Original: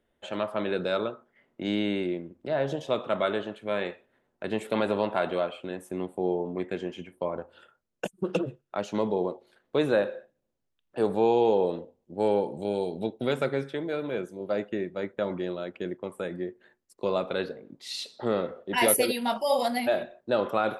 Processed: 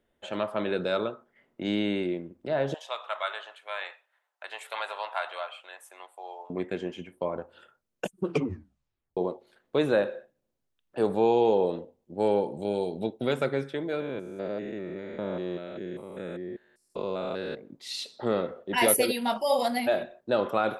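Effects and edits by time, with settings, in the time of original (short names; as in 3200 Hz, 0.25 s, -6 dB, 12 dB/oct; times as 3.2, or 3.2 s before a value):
2.74–6.5 HPF 790 Hz 24 dB/oct
8.25 tape stop 0.92 s
14–17.57 stepped spectrum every 0.2 s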